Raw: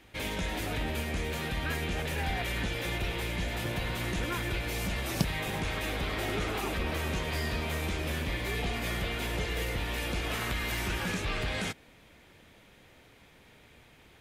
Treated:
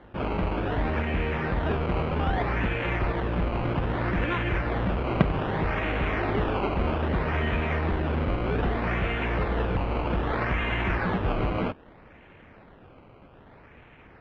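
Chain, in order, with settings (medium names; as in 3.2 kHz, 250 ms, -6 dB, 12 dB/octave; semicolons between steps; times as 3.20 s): decimation with a swept rate 17×, swing 100% 0.63 Hz; low-pass 2.8 kHz 24 dB/octave; trim +6.5 dB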